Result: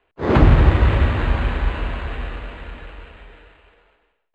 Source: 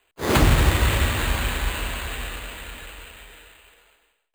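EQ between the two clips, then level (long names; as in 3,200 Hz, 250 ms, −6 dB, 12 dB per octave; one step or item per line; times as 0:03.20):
head-to-tape spacing loss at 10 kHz 40 dB
+6.0 dB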